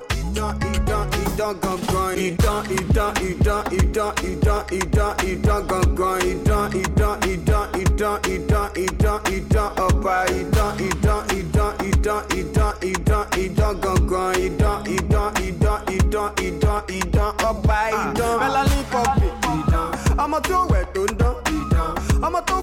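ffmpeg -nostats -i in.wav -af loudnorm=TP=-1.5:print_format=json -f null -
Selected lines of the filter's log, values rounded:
"input_i" : "-21.1",
"input_tp" : "-9.9",
"input_lra" : "1.0",
"input_thresh" : "-31.1",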